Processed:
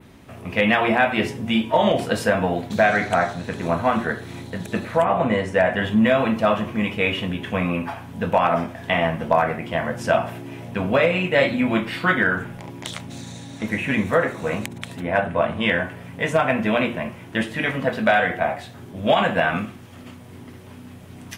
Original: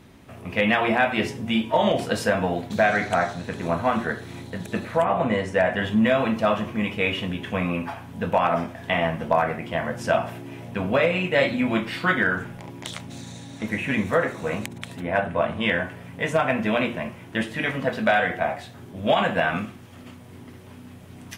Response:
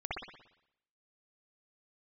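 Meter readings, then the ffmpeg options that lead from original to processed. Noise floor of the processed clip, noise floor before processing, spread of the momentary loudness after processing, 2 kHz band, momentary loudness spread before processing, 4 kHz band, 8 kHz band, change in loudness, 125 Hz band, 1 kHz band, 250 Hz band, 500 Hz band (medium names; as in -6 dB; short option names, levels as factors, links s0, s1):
-41 dBFS, -44 dBFS, 13 LU, +2.5 dB, 13 LU, +2.0 dB, +1.5 dB, +2.5 dB, +2.5 dB, +2.5 dB, +2.5 dB, +2.5 dB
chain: -af "adynamicequalizer=threshold=0.00562:dfrequency=5600:dqfactor=1.2:tfrequency=5600:tqfactor=1.2:attack=5:release=100:ratio=0.375:range=2:mode=cutabove:tftype=bell,volume=1.33"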